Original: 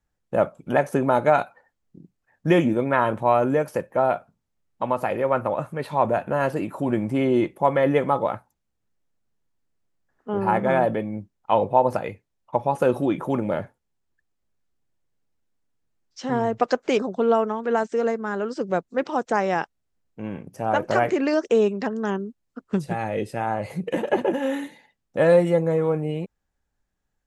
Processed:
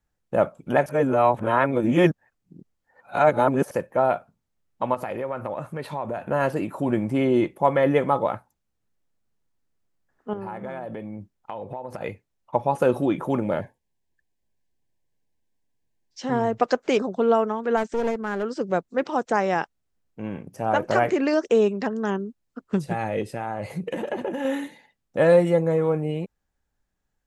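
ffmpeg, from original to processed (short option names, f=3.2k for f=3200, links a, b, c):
-filter_complex "[0:a]asettb=1/sr,asplit=3[a][b][c];[a]atrim=end=4.944[d];[b]atrim=start=4.94:end=6.31,asetpts=PTS-STARTPTS,afade=t=in:d=0.004:c=qsin,afade=t=out:st=1.366:d=0.004:c=qsin,acompressor=threshold=-26dB:ratio=4:attack=3.2:release=140:knee=1:detection=peak[e];[c]atrim=start=6.306[f];[d][e]acrossfade=d=0.004:c1=hsin:c2=qsin[g];[g][f]acrossfade=d=0.004:c1=qsin:c2=hsin,asettb=1/sr,asplit=3[h][i][j];[h]atrim=end=10.334[k];[i]atrim=start=10.33:end=12.01,asetpts=PTS-STARTPTS,afade=t=in:d=0.004:c=qsin,afade=t=out:st=1.676:d=0.004:c=qsin,acompressor=threshold=-30dB:ratio=8:attack=3.2:release=140:knee=1:detection=peak[l];[j]atrim=start=12.006[m];[k][l]acrossfade=d=0.004:c1=hsin:c2=qsin[n];[n][m]acrossfade=d=0.004:c1=qsin:c2=hsin,asettb=1/sr,asplit=3[o][p][q];[o]atrim=end=13.614[r];[p]atrim=start=13.61:end=16.22,asetpts=PTS-STARTPTS,afade=t=in:d=0.004:c=qsin,afade=t=out:st=2.606:d=0.004:c=qsin,asuperstop=centerf=1300:order=20:qfactor=3.2[s];[q]atrim=start=16.216[t];[r][s]acrossfade=d=0.004:c1=hsin:c2=qsin[u];[u][t]acrossfade=d=0.004:c1=qsin:c2=hsin,asplit=3[v][w][x];[v]afade=t=out:st=17.76:d=0.02[y];[w]aeval=exprs='clip(val(0),-1,0.0398)':c=same,afade=t=in:st=17.76:d=0.02,afade=t=out:st=18.42:d=0.02[z];[x]afade=t=in:st=18.42:d=0.02[aa];[y][z][aa]amix=inputs=3:normalize=0,asettb=1/sr,asplit=3[ab][ac][ad];[ab]atrim=end=23.214[ae];[ac]atrim=start=23.21:end=24.45,asetpts=PTS-STARTPTS,afade=t=in:d=0.004:c=qsin,afade=t=out:st=1.236:d=0.004:c=qsin,acompressor=threshold=-24dB:ratio=6:attack=3.2:release=140:knee=1:detection=peak[af];[ad]atrim=start=24.446[ag];[ae][af]acrossfade=d=0.004:c1=hsin:c2=qsin[ah];[ah][ag]acrossfade=d=0.004:c1=qsin:c2=hsin,asplit=3[ai][aj][ak];[ai]atrim=end=0.862[al];[aj]atrim=start=0.858:end=3.712,asetpts=PTS-STARTPTS,areverse[am];[ak]atrim=start=3.708[an];[al][am]acrossfade=d=0.004:c1=hsin:c2=hsin[ao];[ao][an]acrossfade=d=0.004:c1=hsin:c2=hsin"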